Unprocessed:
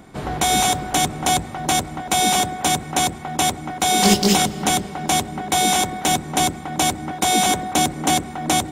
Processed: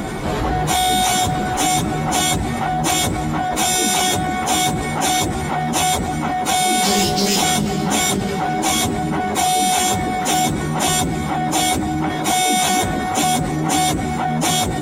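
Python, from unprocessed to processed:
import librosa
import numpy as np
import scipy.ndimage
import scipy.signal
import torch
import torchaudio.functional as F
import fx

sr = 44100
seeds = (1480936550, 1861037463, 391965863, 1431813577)

y = fx.stretch_vocoder_free(x, sr, factor=1.7)
y = fx.env_flatten(y, sr, amount_pct=70)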